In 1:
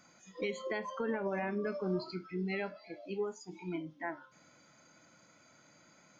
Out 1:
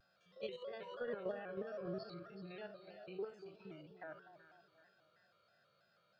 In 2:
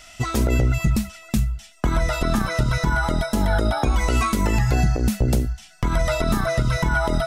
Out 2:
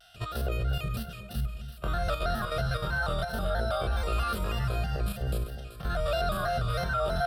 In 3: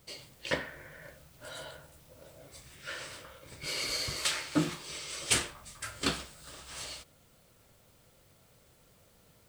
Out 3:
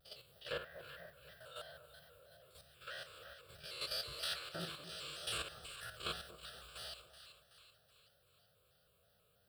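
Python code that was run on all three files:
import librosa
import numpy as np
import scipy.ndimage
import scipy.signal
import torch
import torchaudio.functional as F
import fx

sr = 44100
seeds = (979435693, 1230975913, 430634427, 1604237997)

y = fx.spec_steps(x, sr, hold_ms=50)
y = scipy.signal.sosfilt(scipy.signal.butter(2, 42.0, 'highpass', fs=sr, output='sos'), y)
y = fx.low_shelf(y, sr, hz=220.0, db=-4.0)
y = fx.level_steps(y, sr, step_db=9)
y = fx.fixed_phaser(y, sr, hz=1400.0, stages=8)
y = fx.echo_split(y, sr, split_hz=1100.0, low_ms=242, high_ms=379, feedback_pct=52, wet_db=-11.0)
y = fx.vibrato_shape(y, sr, shape='square', rate_hz=3.1, depth_cents=100.0)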